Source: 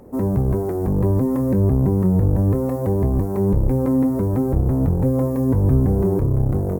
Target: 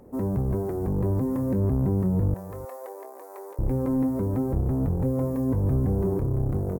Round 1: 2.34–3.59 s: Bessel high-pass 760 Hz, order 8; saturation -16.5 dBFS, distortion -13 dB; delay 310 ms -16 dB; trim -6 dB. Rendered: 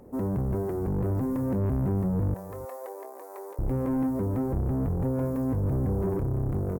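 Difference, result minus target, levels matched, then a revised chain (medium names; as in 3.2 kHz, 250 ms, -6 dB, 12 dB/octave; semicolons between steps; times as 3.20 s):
saturation: distortion +11 dB
2.34–3.59 s: Bessel high-pass 760 Hz, order 8; saturation -8.5 dBFS, distortion -23 dB; delay 310 ms -16 dB; trim -6 dB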